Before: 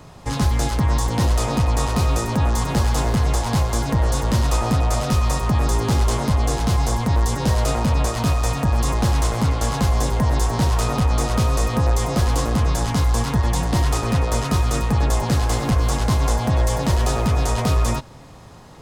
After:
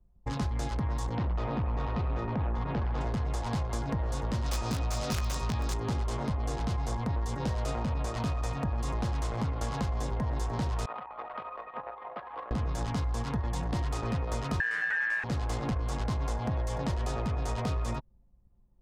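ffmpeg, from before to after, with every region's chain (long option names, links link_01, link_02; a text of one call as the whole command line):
ffmpeg -i in.wav -filter_complex "[0:a]asettb=1/sr,asplit=3[link_01][link_02][link_03];[link_01]atrim=end=1.154[link_04];[link_02]atrim=start=1.15:end=3.01,asetpts=PTS-STARTPTS,afade=type=in:duration=0.004:curve=qsin,afade=type=out:start_time=1.856:duration=0.004:curve=qsin,lowpass=3600,asoftclip=type=hard:threshold=-16dB[link_05];[link_03]atrim=start=3.006[link_06];[link_04][link_05]acrossfade=duration=0.004:curve1=hsin:curve2=qsin[link_07];[link_07][link_06]acrossfade=duration=0.004:curve1=qsin:curve2=hsin,asettb=1/sr,asplit=3[link_08][link_09][link_10];[link_08]atrim=end=4.464[link_11];[link_09]atrim=start=4.46:end=5.74,asetpts=PTS-STARTPTS,afade=type=in:duration=0.004:curve=qsin,afade=type=out:start_time=1.276:duration=0.004:curve=qsin,equalizer=frequency=5400:width_type=o:width=1.5:gain=8,aeval=exprs='(mod(2.99*val(0)+1,2)-1)/2.99':channel_layout=same,asplit=2[link_12][link_13];[link_13]adelay=18,volume=-9dB[link_14];[link_12][link_14]amix=inputs=2:normalize=0,atrim=end_sample=56448[link_15];[link_10]atrim=start=5.736[link_16];[link_11][link_15]acrossfade=duration=0.004:curve1=hsin:curve2=qsin[link_17];[link_17][link_16]acrossfade=duration=0.004:curve1=qsin:curve2=hsin,asettb=1/sr,asplit=3[link_18][link_19][link_20];[link_18]atrim=end=10.864[link_21];[link_19]atrim=start=10.86:end=12.51,asetpts=PTS-STARTPTS,afade=type=in:duration=0.004:curve=qsin,afade=type=out:start_time=1.646:duration=0.004:curve=qsin,acrossover=split=590 3900:gain=0.1 1 0.0891[link_22][link_23][link_24];[link_22][link_23][link_24]amix=inputs=3:normalize=0,acrossover=split=3900[link_25][link_26];[link_26]acompressor=threshold=-58dB:ratio=4:attack=1:release=60[link_27];[link_25][link_27]amix=inputs=2:normalize=0,highpass=180[link_28];[link_20]atrim=start=12.506[link_29];[link_21][link_28]acrossfade=duration=0.004:curve1=hsin:curve2=qsin[link_30];[link_30][link_29]acrossfade=duration=0.004:curve1=qsin:curve2=hsin,asettb=1/sr,asplit=3[link_31][link_32][link_33];[link_31]atrim=end=14.604[link_34];[link_32]atrim=start=14.6:end=15.24,asetpts=PTS-STARTPTS,afade=type=in:duration=0.004:curve=qsin,afade=type=out:start_time=0.636:duration=0.004:curve=qsin,acrossover=split=7100[link_35][link_36];[link_36]acompressor=threshold=-47dB:ratio=4:attack=1:release=60[link_37];[link_35][link_37]amix=inputs=2:normalize=0,lowshelf=frequency=220:gain=9,aeval=exprs='val(0)*sin(2*PI*1700*n/s)':channel_layout=same[link_38];[link_33]atrim=start=15.236[link_39];[link_34][link_38]acrossfade=duration=0.004:curve1=hsin:curve2=qsin[link_40];[link_40][link_39]acrossfade=duration=0.004:curve1=qsin:curve2=hsin,anlmdn=158,highshelf=frequency=9200:gain=-11.5,acompressor=threshold=-20dB:ratio=6,volume=-7.5dB" out.wav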